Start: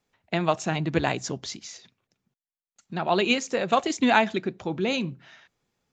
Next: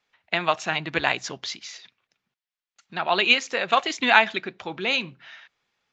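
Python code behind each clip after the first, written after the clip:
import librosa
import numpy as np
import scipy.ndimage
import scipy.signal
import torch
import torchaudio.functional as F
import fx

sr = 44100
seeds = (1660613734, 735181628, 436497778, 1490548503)

y = scipy.signal.sosfilt(scipy.signal.butter(2, 3600.0, 'lowpass', fs=sr, output='sos'), x)
y = fx.tilt_shelf(y, sr, db=-10.0, hz=690.0)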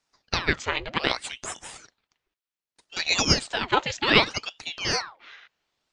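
y = fx.ring_lfo(x, sr, carrier_hz=1700.0, swing_pct=90, hz=0.65)
y = y * librosa.db_to_amplitude(1.0)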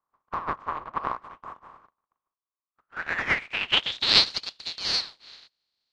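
y = fx.spec_flatten(x, sr, power=0.24)
y = fx.filter_sweep_lowpass(y, sr, from_hz=1100.0, to_hz=4300.0, start_s=2.65, end_s=4.14, q=7.8)
y = y * librosa.db_to_amplitude(-8.0)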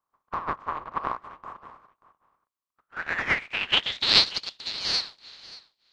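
y = x + 10.0 ** (-19.0 / 20.0) * np.pad(x, (int(584 * sr / 1000.0), 0))[:len(x)]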